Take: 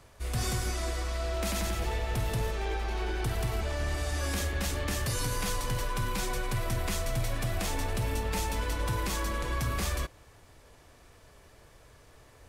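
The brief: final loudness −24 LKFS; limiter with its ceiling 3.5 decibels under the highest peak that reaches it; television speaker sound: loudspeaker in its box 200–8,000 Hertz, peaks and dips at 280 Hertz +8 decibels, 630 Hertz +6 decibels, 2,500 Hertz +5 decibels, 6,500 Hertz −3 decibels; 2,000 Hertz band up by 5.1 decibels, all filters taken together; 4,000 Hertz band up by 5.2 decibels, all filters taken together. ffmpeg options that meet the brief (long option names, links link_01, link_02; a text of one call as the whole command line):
ffmpeg -i in.wav -af "equalizer=frequency=2000:width_type=o:gain=3,equalizer=frequency=4000:width_type=o:gain=5,alimiter=limit=-23dB:level=0:latency=1,highpass=frequency=200:width=0.5412,highpass=frequency=200:width=1.3066,equalizer=frequency=280:width_type=q:width=4:gain=8,equalizer=frequency=630:width_type=q:width=4:gain=6,equalizer=frequency=2500:width_type=q:width=4:gain=5,equalizer=frequency=6500:width_type=q:width=4:gain=-3,lowpass=frequency=8000:width=0.5412,lowpass=frequency=8000:width=1.3066,volume=9dB" out.wav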